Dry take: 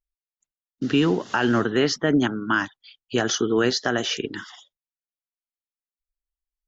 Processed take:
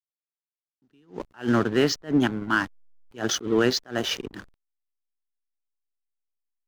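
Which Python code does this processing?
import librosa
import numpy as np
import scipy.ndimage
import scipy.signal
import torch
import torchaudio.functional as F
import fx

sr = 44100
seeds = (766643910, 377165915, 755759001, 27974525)

y = fx.backlash(x, sr, play_db=-28.0)
y = fx.attack_slew(y, sr, db_per_s=230.0)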